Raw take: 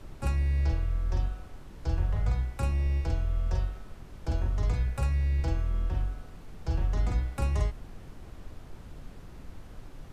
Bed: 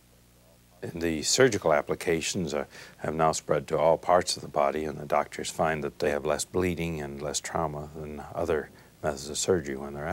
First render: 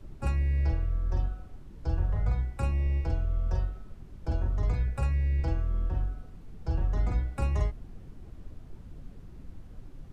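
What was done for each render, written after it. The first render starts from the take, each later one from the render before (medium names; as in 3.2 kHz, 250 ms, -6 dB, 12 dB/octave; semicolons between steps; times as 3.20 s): noise reduction 9 dB, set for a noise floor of -46 dBFS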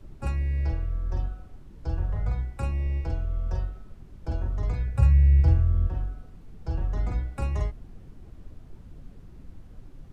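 4.94–5.87 s: peaking EQ 94 Hz +14.5 dB 1.3 oct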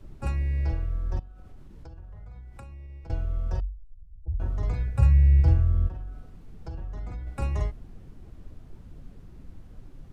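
1.19–3.10 s: compression 10:1, threshold -40 dBFS; 3.60–4.40 s: spectral contrast enhancement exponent 3.2; 5.88–7.27 s: compression 3:1, threshold -34 dBFS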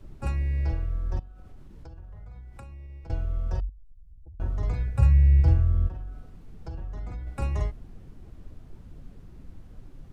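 3.69–4.40 s: compression, threshold -44 dBFS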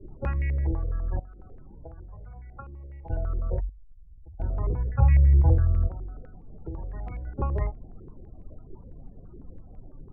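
loudest bins only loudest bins 32; step-sequenced low-pass 12 Hz 390–2200 Hz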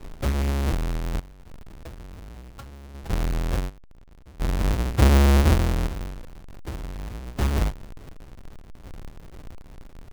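square wave that keeps the level; tremolo saw down 0.68 Hz, depth 45%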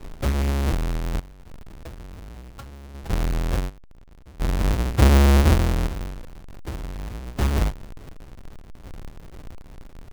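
trim +1.5 dB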